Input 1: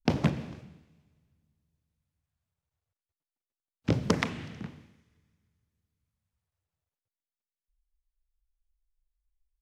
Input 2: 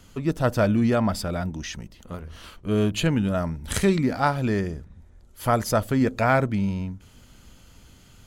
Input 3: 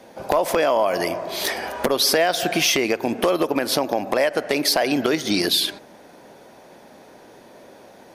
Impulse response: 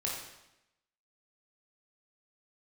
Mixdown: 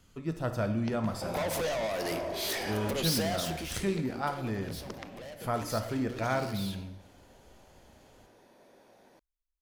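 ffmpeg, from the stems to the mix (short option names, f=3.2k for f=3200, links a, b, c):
-filter_complex "[0:a]acompressor=threshold=-28dB:ratio=6,adelay=800,volume=-11dB[a];[1:a]volume=-14dB,asplit=2[b][c];[c]volume=-6dB[d];[2:a]asoftclip=type=tanh:threshold=-27dB,adynamicequalizer=threshold=0.00562:dfrequency=1100:dqfactor=0.85:tfrequency=1100:tqfactor=0.85:attack=5:release=100:ratio=0.375:range=2.5:mode=cutabove:tftype=bell,adelay=1050,volume=-3.5dB,afade=t=out:st=3.28:d=0.46:silence=0.251189,asplit=2[e][f];[f]volume=-11.5dB[g];[3:a]atrim=start_sample=2205[h];[d][g]amix=inputs=2:normalize=0[i];[i][h]afir=irnorm=-1:irlink=0[j];[a][b][e][j]amix=inputs=4:normalize=0"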